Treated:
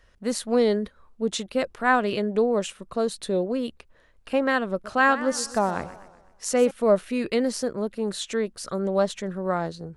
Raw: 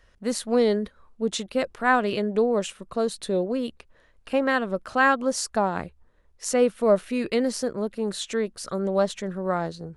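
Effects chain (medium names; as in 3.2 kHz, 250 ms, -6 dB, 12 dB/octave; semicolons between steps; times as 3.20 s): 4.71–6.71 s: modulated delay 125 ms, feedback 50%, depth 170 cents, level -15 dB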